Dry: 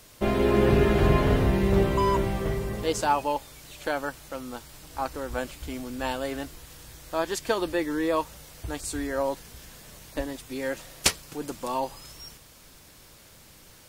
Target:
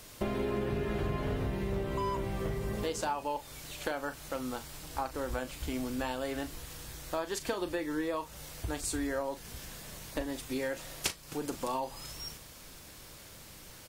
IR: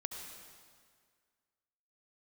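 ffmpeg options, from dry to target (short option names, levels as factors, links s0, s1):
-filter_complex "[0:a]acompressor=threshold=0.0251:ratio=6,asplit=2[s0][s1];[s1]adelay=39,volume=0.251[s2];[s0][s2]amix=inputs=2:normalize=0,volume=1.12"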